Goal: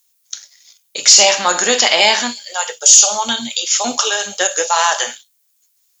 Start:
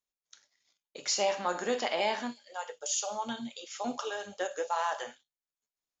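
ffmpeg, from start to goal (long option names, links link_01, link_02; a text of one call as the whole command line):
ffmpeg -i in.wav -af "crystalizer=i=10:c=0,apsyclip=12dB,volume=-1.5dB" out.wav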